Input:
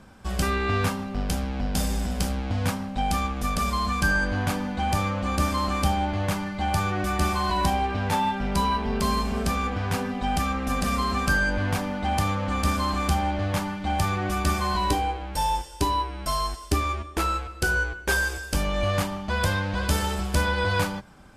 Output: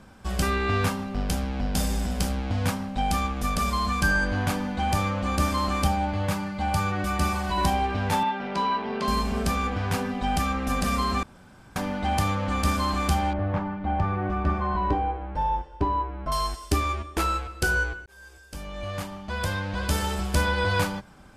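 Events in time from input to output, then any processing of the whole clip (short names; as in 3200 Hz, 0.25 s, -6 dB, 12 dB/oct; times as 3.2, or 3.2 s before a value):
5.87–7.58 notch comb 350 Hz
8.23–9.08 BPF 260–3800 Hz
11.23–11.76 room tone
13.33–16.32 LPF 1400 Hz
18.06–20.3 fade in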